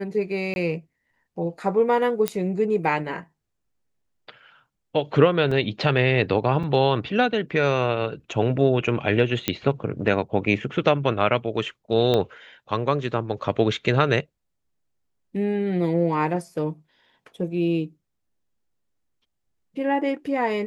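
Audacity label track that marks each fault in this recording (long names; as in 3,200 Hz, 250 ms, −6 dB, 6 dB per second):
0.540000	0.560000	drop-out 21 ms
2.280000	2.280000	click −7 dBFS
5.510000	5.510000	drop-out 4.4 ms
6.630000	6.630000	drop-out 4.8 ms
9.480000	9.480000	click −6 dBFS
12.140000	12.140000	click −11 dBFS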